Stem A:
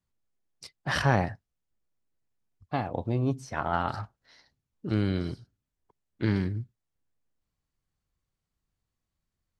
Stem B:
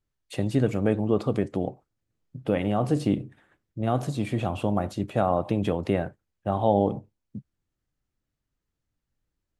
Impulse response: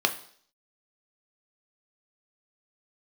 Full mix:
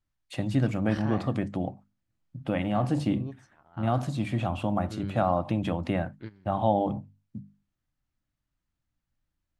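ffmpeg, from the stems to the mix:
-filter_complex "[0:a]volume=-12.5dB[link_01];[1:a]equalizer=frequency=430:width_type=o:width=0.41:gain=-14.5,bandreject=frequency=50:width_type=h:width=6,bandreject=frequency=100:width_type=h:width=6,bandreject=frequency=150:width_type=h:width=6,bandreject=frequency=200:width_type=h:width=6,bandreject=frequency=250:width_type=h:width=6,volume=0.5dB,asplit=2[link_02][link_03];[link_03]apad=whole_len=423289[link_04];[link_01][link_04]sidechaingate=range=-18dB:threshold=-55dB:ratio=16:detection=peak[link_05];[link_05][link_02]amix=inputs=2:normalize=0,highshelf=frequency=6800:gain=-8.5"

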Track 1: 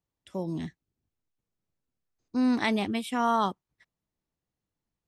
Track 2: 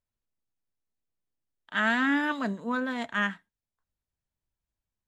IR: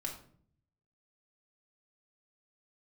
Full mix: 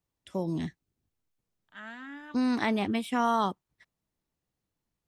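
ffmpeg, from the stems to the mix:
-filter_complex "[0:a]deesser=0.85,volume=2dB,asplit=2[link_01][link_02];[1:a]volume=-18.5dB[link_03];[link_02]apad=whole_len=223633[link_04];[link_03][link_04]sidechaincompress=threshold=-36dB:ratio=8:attack=16:release=1170[link_05];[link_01][link_05]amix=inputs=2:normalize=0,acrossover=split=930|2500[link_06][link_07][link_08];[link_06]acompressor=threshold=-25dB:ratio=4[link_09];[link_07]acompressor=threshold=-29dB:ratio=4[link_10];[link_08]acompressor=threshold=-42dB:ratio=4[link_11];[link_09][link_10][link_11]amix=inputs=3:normalize=0"

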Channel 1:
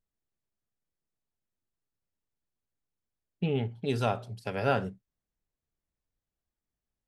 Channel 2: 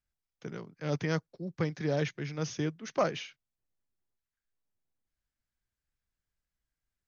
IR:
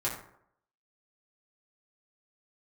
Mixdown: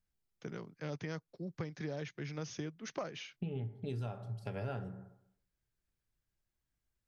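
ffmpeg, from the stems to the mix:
-filter_complex "[0:a]lowshelf=frequency=330:gain=9,volume=-9.5dB,asplit=2[link_01][link_02];[link_02]volume=-11dB[link_03];[1:a]volume=-2dB[link_04];[2:a]atrim=start_sample=2205[link_05];[link_03][link_05]afir=irnorm=-1:irlink=0[link_06];[link_01][link_04][link_06]amix=inputs=3:normalize=0,acompressor=threshold=-37dB:ratio=6"

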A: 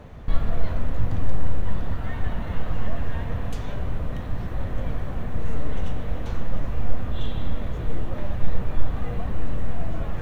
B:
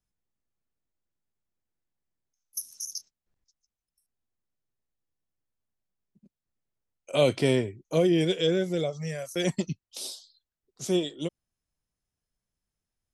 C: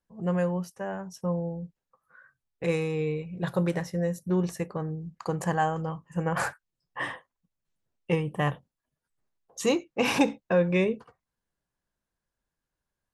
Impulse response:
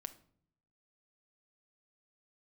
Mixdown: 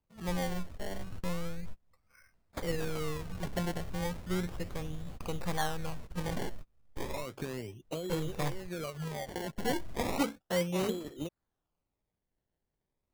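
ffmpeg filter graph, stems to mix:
-filter_complex "[0:a]volume=-14.5dB[link_01];[1:a]acompressor=threshold=-30dB:ratio=6,volume=-0.5dB[link_02];[2:a]volume=-8dB,asplit=2[link_03][link_04];[link_04]apad=whole_len=450402[link_05];[link_01][link_05]sidechaingate=range=-33dB:threshold=-54dB:ratio=16:detection=peak[link_06];[link_06][link_02]amix=inputs=2:normalize=0,acompressor=threshold=-34dB:ratio=6,volume=0dB[link_07];[link_03][link_07]amix=inputs=2:normalize=0,acrusher=samples=24:mix=1:aa=0.000001:lfo=1:lforange=24:lforate=0.34"

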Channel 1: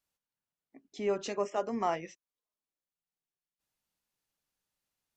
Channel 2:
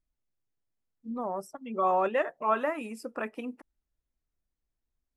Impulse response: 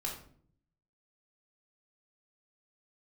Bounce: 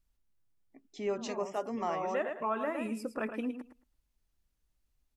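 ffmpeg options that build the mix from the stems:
-filter_complex "[0:a]volume=-2dB,asplit=2[link_01][link_02];[1:a]lowshelf=frequency=250:gain=9.5,volume=-2dB,asplit=2[link_03][link_04];[link_04]volume=-9.5dB[link_05];[link_02]apad=whole_len=227963[link_06];[link_03][link_06]sidechaincompress=threshold=-56dB:ratio=8:attack=16:release=137[link_07];[link_05]aecho=0:1:110|220|330:1|0.16|0.0256[link_08];[link_01][link_07][link_08]amix=inputs=3:normalize=0,alimiter=limit=-23dB:level=0:latency=1:release=200"

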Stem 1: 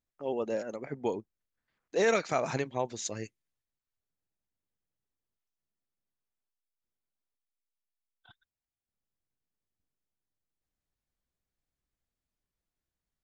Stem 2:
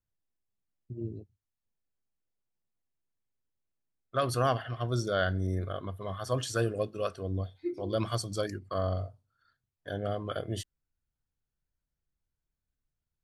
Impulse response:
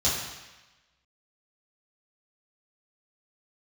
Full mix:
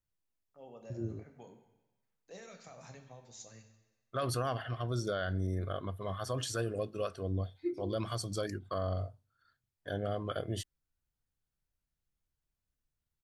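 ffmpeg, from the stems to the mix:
-filter_complex "[0:a]equalizer=frequency=350:width_type=o:width=0.85:gain=-8.5,alimiter=level_in=0.5dB:limit=-24dB:level=0:latency=1:release=109,volume=-0.5dB,acrossover=split=430|3000[link_01][link_02][link_03];[link_02]acompressor=threshold=-39dB:ratio=6[link_04];[link_01][link_04][link_03]amix=inputs=3:normalize=0,adelay=350,volume=-16dB,asplit=2[link_05][link_06];[link_06]volume=-15.5dB[link_07];[1:a]volume=-1dB,asplit=2[link_08][link_09];[link_09]apad=whole_len=598914[link_10];[link_05][link_10]sidechaincompress=threshold=-41dB:ratio=8:attack=41:release=294[link_11];[2:a]atrim=start_sample=2205[link_12];[link_07][link_12]afir=irnorm=-1:irlink=0[link_13];[link_11][link_08][link_13]amix=inputs=3:normalize=0,alimiter=level_in=0.5dB:limit=-24dB:level=0:latency=1:release=97,volume=-0.5dB"

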